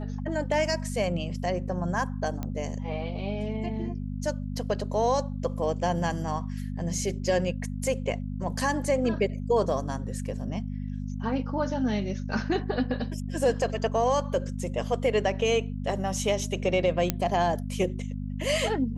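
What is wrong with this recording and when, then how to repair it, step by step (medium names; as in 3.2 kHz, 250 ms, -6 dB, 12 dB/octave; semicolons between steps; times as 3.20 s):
hum 50 Hz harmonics 5 -33 dBFS
2.43 s: pop -19 dBFS
17.10 s: pop -8 dBFS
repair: de-click; de-hum 50 Hz, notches 5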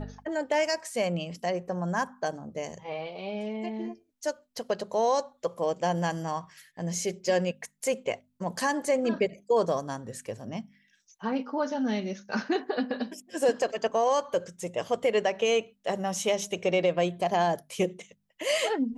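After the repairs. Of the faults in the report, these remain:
nothing left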